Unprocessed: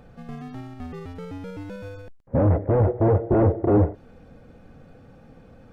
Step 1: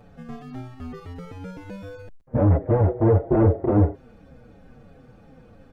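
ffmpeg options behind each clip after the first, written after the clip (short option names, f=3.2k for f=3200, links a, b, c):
-filter_complex "[0:a]asplit=2[a][b];[b]adelay=6.4,afreqshift=-2.9[c];[a][c]amix=inputs=2:normalize=1,volume=2.5dB"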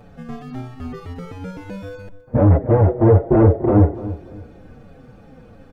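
-filter_complex "[0:a]asplit=2[a][b];[b]adelay=291,lowpass=f=1.3k:p=1,volume=-14.5dB,asplit=2[c][d];[d]adelay=291,lowpass=f=1.3k:p=1,volume=0.3,asplit=2[e][f];[f]adelay=291,lowpass=f=1.3k:p=1,volume=0.3[g];[a][c][e][g]amix=inputs=4:normalize=0,volume=5dB"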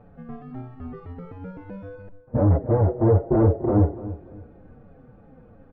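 -af "lowpass=1.5k,volume=-5.5dB"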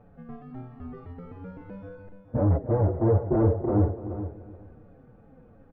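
-af "aecho=1:1:423|846:0.266|0.0399,volume=-4dB"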